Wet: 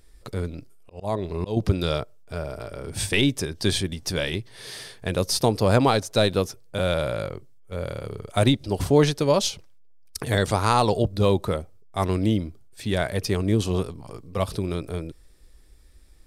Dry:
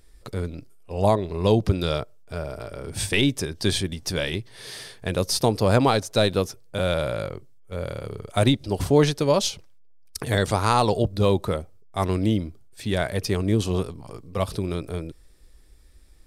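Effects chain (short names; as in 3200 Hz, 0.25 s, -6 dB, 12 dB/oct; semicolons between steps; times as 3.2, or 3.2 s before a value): 0.52–1.57 auto swell 0.251 s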